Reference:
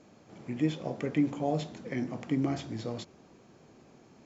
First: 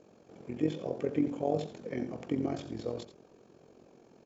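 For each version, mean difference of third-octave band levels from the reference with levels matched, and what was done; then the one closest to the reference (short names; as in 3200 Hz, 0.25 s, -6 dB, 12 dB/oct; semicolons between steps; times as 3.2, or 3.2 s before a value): 2.5 dB: bell 460 Hz +9 dB 0.94 oct; notch 2000 Hz, Q 14; AM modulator 44 Hz, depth 55%; echo 85 ms -12.5 dB; gain -2.5 dB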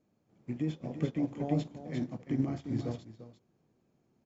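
6.5 dB: low shelf 350 Hz +9 dB; limiter -21 dBFS, peak gain reduction 10 dB; echo 0.346 s -4.5 dB; upward expander 2.5:1, over -39 dBFS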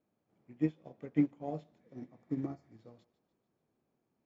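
11.0 dB: spectral repair 1.83–2.7, 1500–4200 Hz after; high shelf 3800 Hz -11.5 dB; on a send: thinning echo 0.148 s, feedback 61%, high-pass 610 Hz, level -15 dB; on the sum: upward expander 2.5:1, over -38 dBFS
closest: first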